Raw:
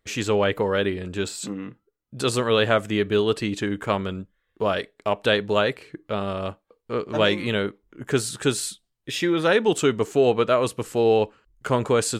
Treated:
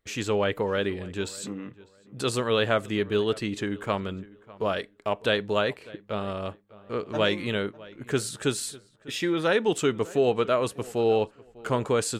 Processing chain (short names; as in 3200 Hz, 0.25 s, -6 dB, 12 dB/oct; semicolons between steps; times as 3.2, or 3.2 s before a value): darkening echo 0.6 s, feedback 25%, low-pass 2700 Hz, level -20.5 dB; gain -4 dB